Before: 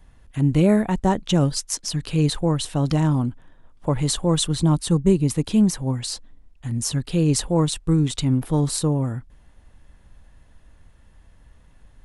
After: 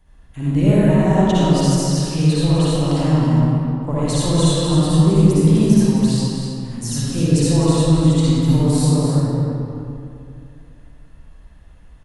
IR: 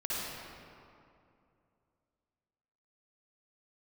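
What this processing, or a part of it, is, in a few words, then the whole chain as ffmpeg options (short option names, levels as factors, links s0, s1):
cave: -filter_complex "[0:a]aecho=1:1:256:0.376[s0];[1:a]atrim=start_sample=2205[s1];[s0][s1]afir=irnorm=-1:irlink=0,volume=0.794"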